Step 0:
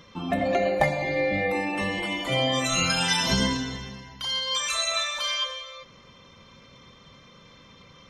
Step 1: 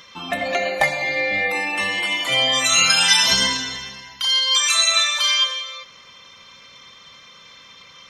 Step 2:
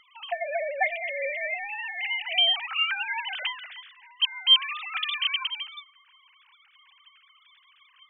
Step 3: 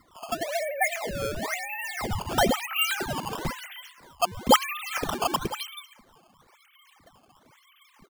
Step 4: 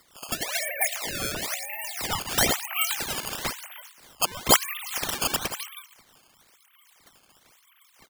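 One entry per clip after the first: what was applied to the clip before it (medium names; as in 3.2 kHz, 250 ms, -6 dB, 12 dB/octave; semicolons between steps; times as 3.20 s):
tilt shelf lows -9.5 dB, about 710 Hz; trim +1.5 dB
formants replaced by sine waves; trim -8.5 dB
delay 388 ms -22.5 dB; decimation with a swept rate 13×, swing 160% 1 Hz
spectral peaks clipped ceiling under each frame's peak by 23 dB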